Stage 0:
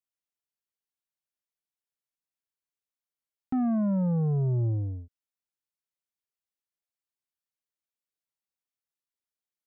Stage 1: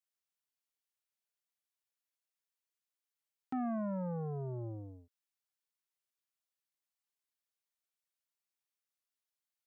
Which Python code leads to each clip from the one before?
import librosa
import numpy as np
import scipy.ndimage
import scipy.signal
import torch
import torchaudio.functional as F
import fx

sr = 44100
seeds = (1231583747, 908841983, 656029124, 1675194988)

y = fx.highpass(x, sr, hz=770.0, slope=6)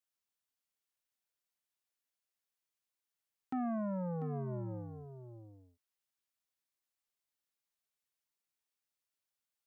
y = x + 10.0 ** (-10.5 / 20.0) * np.pad(x, (int(694 * sr / 1000.0), 0))[:len(x)]